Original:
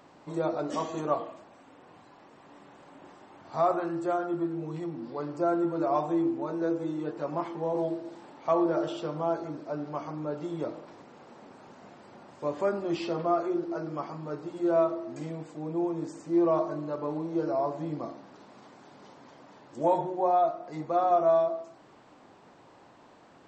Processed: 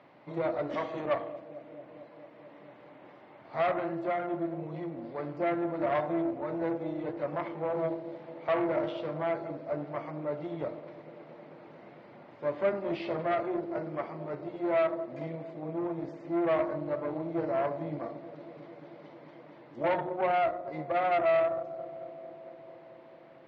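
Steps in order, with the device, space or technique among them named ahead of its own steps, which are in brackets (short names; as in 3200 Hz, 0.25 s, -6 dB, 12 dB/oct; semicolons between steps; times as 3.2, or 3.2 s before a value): analogue delay pedal into a guitar amplifier (analogue delay 0.223 s, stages 1024, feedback 84%, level -15.5 dB; tube stage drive 25 dB, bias 0.7; speaker cabinet 99–4000 Hz, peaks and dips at 130 Hz +5 dB, 600 Hz +6 dB, 2100 Hz +8 dB)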